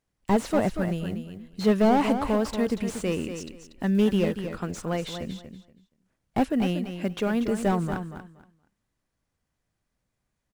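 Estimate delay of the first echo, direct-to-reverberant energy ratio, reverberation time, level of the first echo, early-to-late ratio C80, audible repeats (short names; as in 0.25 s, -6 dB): 0.237 s, none, none, -9.0 dB, none, 2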